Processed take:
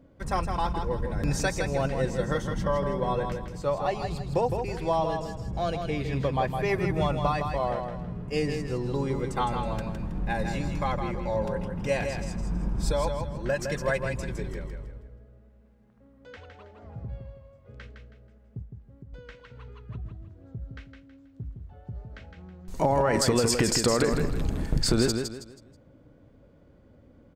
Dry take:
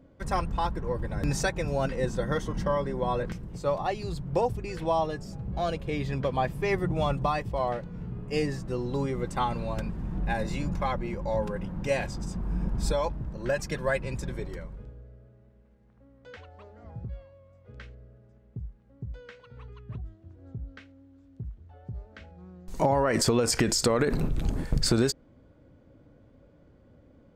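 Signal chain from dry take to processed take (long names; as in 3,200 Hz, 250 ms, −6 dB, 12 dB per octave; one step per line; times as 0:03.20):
0:18.62–0:19.13: downward compressor, threshold −44 dBFS, peak gain reduction 10.5 dB
on a send: repeating echo 161 ms, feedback 32%, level −6 dB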